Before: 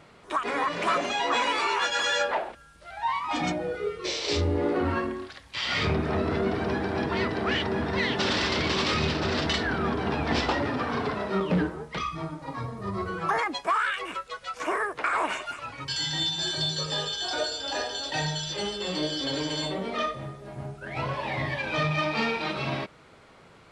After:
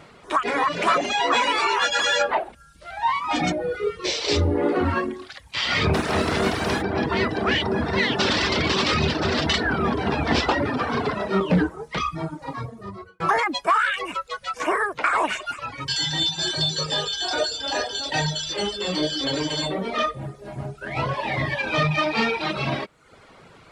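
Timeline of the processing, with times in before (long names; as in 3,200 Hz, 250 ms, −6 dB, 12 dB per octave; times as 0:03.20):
0:05.93–0:06.81: compressing power law on the bin magnitudes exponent 0.62
0:12.39–0:13.20: fade out
whole clip: reverb reduction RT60 0.65 s; level +6 dB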